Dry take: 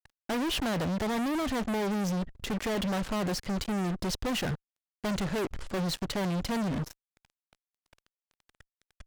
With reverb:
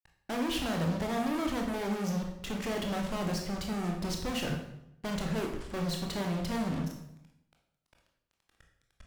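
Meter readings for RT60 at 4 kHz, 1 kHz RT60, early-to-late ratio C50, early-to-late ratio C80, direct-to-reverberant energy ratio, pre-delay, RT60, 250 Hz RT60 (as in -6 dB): 0.65 s, 0.75 s, 5.5 dB, 8.5 dB, 1.0 dB, 19 ms, 0.80 s, 0.95 s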